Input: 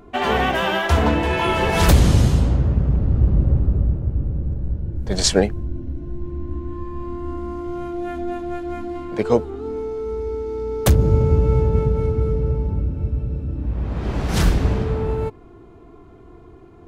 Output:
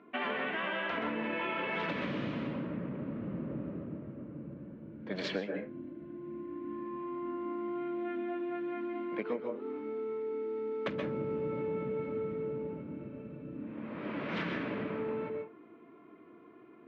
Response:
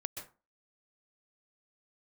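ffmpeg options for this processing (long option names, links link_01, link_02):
-filter_complex "[0:a]highpass=frequency=210:width=0.5412,highpass=frequency=210:width=1.3066,equalizer=frequency=390:width_type=q:width=4:gain=-7,equalizer=frequency=770:width_type=q:width=4:gain=-10,equalizer=frequency=2200:width_type=q:width=4:gain=4,lowpass=frequency=3000:width=0.5412,lowpass=frequency=3000:width=1.3066[link_01];[1:a]atrim=start_sample=2205,afade=type=out:start_time=0.3:duration=0.01,atrim=end_sample=13671[link_02];[link_01][link_02]afir=irnorm=-1:irlink=0,acompressor=threshold=-26dB:ratio=12,volume=-5dB"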